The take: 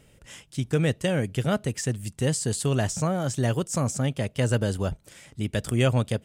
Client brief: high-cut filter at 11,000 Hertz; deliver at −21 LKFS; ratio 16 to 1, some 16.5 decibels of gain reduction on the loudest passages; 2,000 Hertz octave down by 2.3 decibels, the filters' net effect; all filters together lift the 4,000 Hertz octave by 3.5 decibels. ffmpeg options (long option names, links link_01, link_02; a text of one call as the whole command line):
ffmpeg -i in.wav -af "lowpass=11000,equalizer=frequency=2000:width_type=o:gain=-5,equalizer=frequency=4000:width_type=o:gain=7,acompressor=threshold=-35dB:ratio=16,volume=19dB" out.wav